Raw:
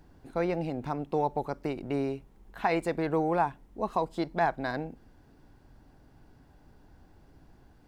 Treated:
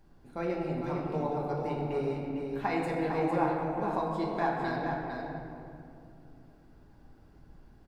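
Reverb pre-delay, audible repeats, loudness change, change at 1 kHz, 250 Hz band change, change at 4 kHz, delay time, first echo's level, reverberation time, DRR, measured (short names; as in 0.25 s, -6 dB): 5 ms, 1, -1.0 dB, -1.5 dB, 0.0 dB, -2.0 dB, 0.453 s, -6.0 dB, 2.5 s, -4.5 dB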